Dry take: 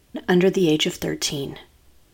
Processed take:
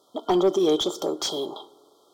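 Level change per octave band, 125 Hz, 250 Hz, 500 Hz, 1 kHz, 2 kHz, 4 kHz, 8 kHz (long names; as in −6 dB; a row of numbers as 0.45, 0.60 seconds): −15.5, −4.5, −0.5, +3.5, −17.5, −3.5, −5.5 decibels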